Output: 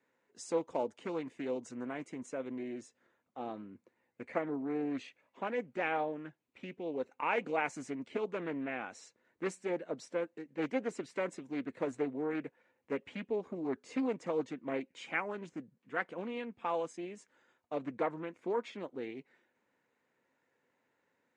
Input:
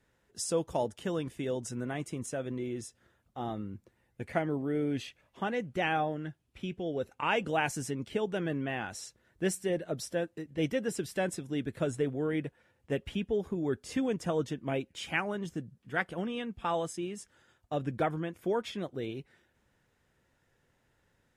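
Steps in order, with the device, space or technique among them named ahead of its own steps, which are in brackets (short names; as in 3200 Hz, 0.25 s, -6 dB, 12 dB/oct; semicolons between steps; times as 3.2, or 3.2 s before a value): full-range speaker at full volume (Doppler distortion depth 0.43 ms; speaker cabinet 250–7100 Hz, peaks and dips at 260 Hz +6 dB, 490 Hz +4 dB, 980 Hz +5 dB, 2200 Hz +5 dB, 3300 Hz -5 dB, 5300 Hz -7 dB); gain -5.5 dB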